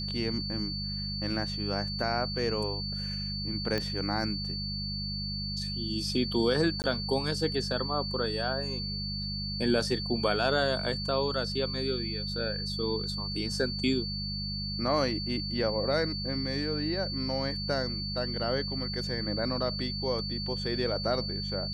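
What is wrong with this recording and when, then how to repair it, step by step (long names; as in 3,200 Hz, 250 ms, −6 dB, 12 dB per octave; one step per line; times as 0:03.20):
mains hum 50 Hz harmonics 4 −37 dBFS
whistle 4,500 Hz −35 dBFS
0:03.78: click −17 dBFS
0:06.82–0:06.84: drop-out 19 ms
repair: click removal
hum removal 50 Hz, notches 4
notch filter 4,500 Hz, Q 30
repair the gap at 0:06.82, 19 ms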